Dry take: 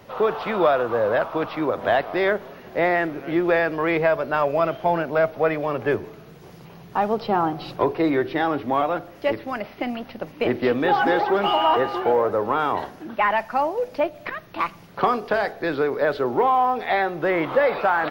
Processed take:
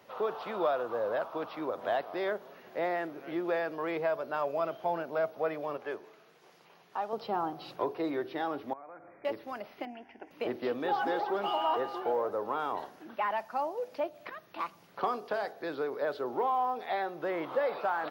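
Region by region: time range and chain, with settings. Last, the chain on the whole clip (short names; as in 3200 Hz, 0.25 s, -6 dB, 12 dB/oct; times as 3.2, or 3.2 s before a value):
5.77–7.13 HPF 550 Hz 6 dB/oct + high shelf 12000 Hz -11 dB
8.73–9.25 compressor 8:1, threshold -34 dBFS + brick-wall FIR low-pass 2500 Hz
9.85–10.31 air absorption 86 m + fixed phaser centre 810 Hz, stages 8
whole clip: HPF 400 Hz 6 dB/oct; dynamic EQ 2100 Hz, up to -7 dB, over -40 dBFS, Q 1.2; gain -8.5 dB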